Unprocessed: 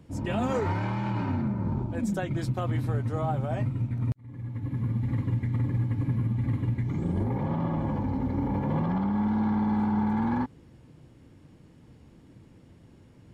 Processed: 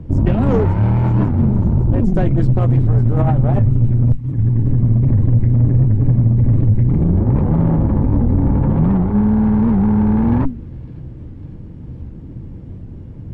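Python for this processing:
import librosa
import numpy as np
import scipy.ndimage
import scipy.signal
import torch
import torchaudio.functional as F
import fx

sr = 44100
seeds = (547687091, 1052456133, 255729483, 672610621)

p1 = fx.cheby_harmonics(x, sr, harmonics=(6,), levels_db=(-17,), full_scale_db=-17.0)
p2 = fx.tilt_eq(p1, sr, slope=-4.5)
p3 = fx.over_compress(p2, sr, threshold_db=-20.0, ratio=-0.5)
p4 = p2 + (p3 * librosa.db_to_amplitude(-2.0))
p5 = fx.hum_notches(p4, sr, base_hz=50, count=5)
p6 = p5 + fx.echo_wet_highpass(p5, sr, ms=555, feedback_pct=70, hz=4600.0, wet_db=-8.5, dry=0)
y = fx.record_warp(p6, sr, rpm=78.0, depth_cents=160.0)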